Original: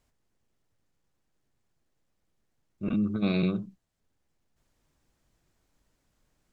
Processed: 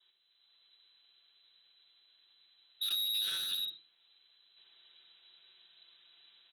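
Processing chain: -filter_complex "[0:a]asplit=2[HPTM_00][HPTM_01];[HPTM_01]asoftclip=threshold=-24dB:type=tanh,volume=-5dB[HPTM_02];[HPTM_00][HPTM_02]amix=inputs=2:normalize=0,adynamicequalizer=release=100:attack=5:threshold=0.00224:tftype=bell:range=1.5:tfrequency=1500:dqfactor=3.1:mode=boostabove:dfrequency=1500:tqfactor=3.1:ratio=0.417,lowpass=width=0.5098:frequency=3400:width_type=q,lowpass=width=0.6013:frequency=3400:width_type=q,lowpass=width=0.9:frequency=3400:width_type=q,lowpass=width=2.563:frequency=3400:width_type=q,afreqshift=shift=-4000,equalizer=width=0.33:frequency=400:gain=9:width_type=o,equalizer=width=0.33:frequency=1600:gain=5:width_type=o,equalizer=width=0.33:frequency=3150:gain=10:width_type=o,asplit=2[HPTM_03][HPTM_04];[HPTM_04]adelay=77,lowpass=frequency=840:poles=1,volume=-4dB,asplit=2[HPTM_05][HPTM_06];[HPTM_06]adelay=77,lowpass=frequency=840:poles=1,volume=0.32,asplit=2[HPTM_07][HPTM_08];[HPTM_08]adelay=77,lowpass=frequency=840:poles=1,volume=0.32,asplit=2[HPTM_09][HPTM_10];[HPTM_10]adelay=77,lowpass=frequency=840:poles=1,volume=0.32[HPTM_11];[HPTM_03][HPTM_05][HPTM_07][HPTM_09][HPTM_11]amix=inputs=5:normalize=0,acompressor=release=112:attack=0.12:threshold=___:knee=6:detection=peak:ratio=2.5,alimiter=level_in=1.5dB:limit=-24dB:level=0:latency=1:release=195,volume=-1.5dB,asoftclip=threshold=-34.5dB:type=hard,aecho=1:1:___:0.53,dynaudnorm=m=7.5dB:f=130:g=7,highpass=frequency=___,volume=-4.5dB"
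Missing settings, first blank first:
-26dB, 5.9, 42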